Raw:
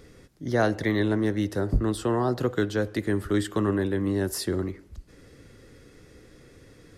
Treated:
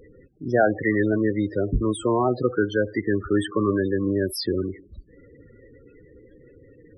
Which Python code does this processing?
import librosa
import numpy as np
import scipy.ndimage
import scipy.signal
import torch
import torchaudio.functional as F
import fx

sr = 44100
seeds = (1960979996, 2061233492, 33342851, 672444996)

y = fx.low_shelf(x, sr, hz=390.0, db=-9.0)
y = fx.spec_topn(y, sr, count=16)
y = y * 10.0 ** (8.5 / 20.0)